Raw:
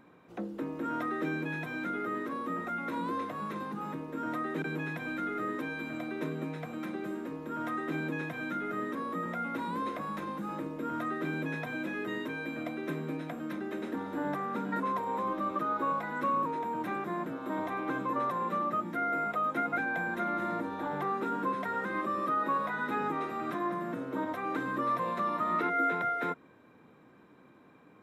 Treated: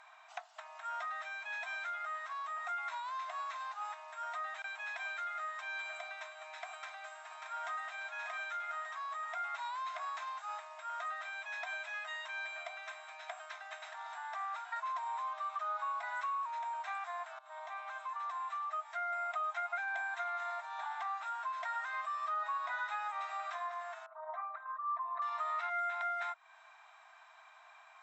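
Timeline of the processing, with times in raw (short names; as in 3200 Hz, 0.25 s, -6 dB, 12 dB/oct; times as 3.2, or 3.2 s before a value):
6.71–7.78 echo throw 0.59 s, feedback 60%, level -5.5 dB
17.39–19.56 fade in, from -18.5 dB
24.06–25.22 formant sharpening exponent 2
whole clip: compressor 3:1, threshold -43 dBFS; FFT band-pass 620–8100 Hz; high shelf 3600 Hz +8.5 dB; gain +4.5 dB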